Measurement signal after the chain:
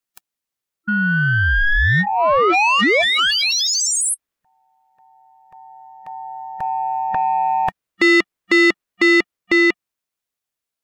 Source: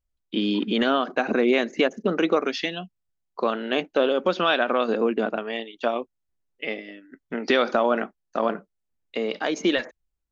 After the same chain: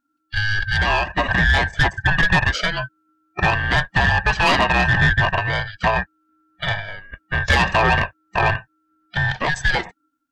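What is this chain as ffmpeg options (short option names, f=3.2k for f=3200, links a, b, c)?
-filter_complex "[0:a]afftfilt=real='real(if(lt(b,1008),b+24*(1-2*mod(floor(b/24),2)),b),0)':imag='imag(if(lt(b,1008),b+24*(1-2*mod(floor(b/24),2)),b),0)':win_size=2048:overlap=0.75,acrossover=split=130|2200[a][b][c];[a]alimiter=limit=-21dB:level=0:latency=1:release=260[d];[b]dynaudnorm=f=340:g=9:m=7dB[e];[d][e][c]amix=inputs=3:normalize=0,aeval=exprs='val(0)*sin(2*PI*830*n/s)':c=same,asoftclip=type=tanh:threshold=-16dB,volume=7dB"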